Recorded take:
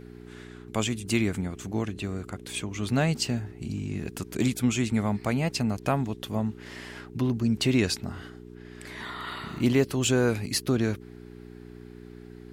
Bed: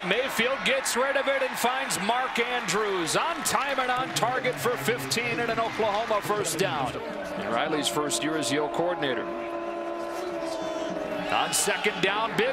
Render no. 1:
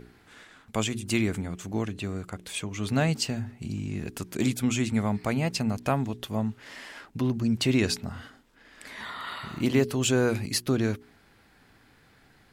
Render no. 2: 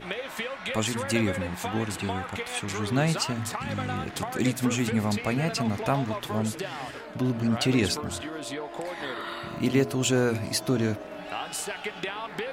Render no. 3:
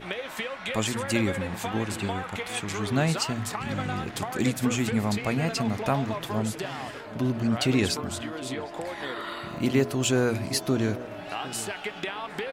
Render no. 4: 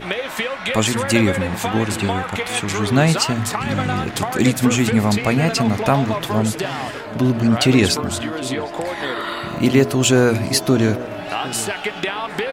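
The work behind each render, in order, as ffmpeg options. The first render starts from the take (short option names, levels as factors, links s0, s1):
-af "bandreject=f=60:t=h:w=4,bandreject=f=120:t=h:w=4,bandreject=f=180:t=h:w=4,bandreject=f=240:t=h:w=4,bandreject=f=300:t=h:w=4,bandreject=f=360:t=h:w=4,bandreject=f=420:t=h:w=4"
-filter_complex "[1:a]volume=0.376[s0];[0:a][s0]amix=inputs=2:normalize=0"
-filter_complex "[0:a]asplit=2[s0][s1];[s1]adelay=758,volume=0.158,highshelf=f=4000:g=-17.1[s2];[s0][s2]amix=inputs=2:normalize=0"
-af "volume=2.99,alimiter=limit=0.708:level=0:latency=1"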